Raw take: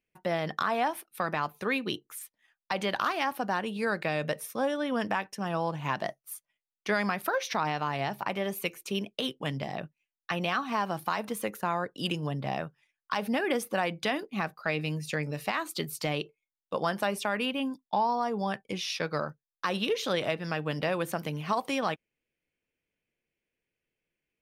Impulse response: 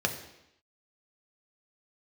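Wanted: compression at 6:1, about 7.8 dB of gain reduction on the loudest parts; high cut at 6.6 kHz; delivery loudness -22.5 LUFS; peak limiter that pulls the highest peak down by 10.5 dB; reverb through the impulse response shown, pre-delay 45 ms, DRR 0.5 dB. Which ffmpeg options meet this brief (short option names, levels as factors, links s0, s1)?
-filter_complex "[0:a]lowpass=6600,acompressor=threshold=0.0251:ratio=6,alimiter=level_in=1.41:limit=0.0631:level=0:latency=1,volume=0.708,asplit=2[s0][s1];[1:a]atrim=start_sample=2205,adelay=45[s2];[s1][s2]afir=irnorm=-1:irlink=0,volume=0.335[s3];[s0][s3]amix=inputs=2:normalize=0,volume=4.73"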